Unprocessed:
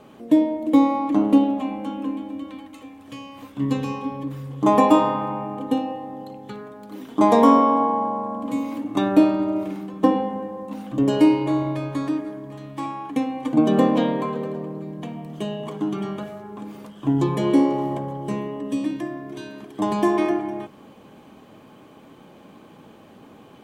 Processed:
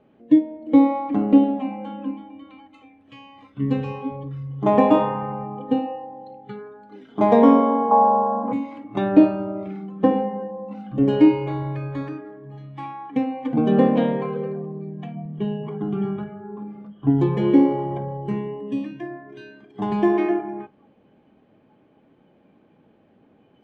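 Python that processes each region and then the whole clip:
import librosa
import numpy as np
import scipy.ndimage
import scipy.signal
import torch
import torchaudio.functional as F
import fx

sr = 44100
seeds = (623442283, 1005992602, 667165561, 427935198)

y = fx.chain(x, sr, fx.lowpass(hz=1800.0, slope=12),
    fx.peak_eq(hz=890.0, db=11.5, octaves=2.0), at=(7.91, 8.53))
y = fx.chain(y, sr, fx.lowpass(hz=2600.0, slope=6),
    fx.low_shelf(hz=380.0, db=3.0), at=(15.15, 17.1))
y = scipy.signal.sosfilt(scipy.signal.butter(2, 2200.0, 'lowpass', fs=sr, output='sos'), y)
y = fx.noise_reduce_blind(y, sr, reduce_db=12)
y = fx.peak_eq(y, sr, hz=1100.0, db=-8.5, octaves=0.58)
y = F.gain(torch.from_numpy(y), 2.5).numpy()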